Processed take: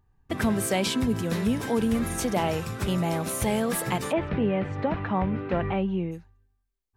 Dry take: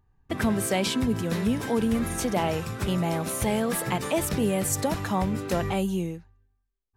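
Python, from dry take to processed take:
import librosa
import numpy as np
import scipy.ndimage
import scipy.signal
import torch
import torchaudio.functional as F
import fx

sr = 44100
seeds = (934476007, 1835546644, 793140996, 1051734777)

y = fx.lowpass(x, sr, hz=2700.0, slope=24, at=(4.11, 6.11), fade=0.02)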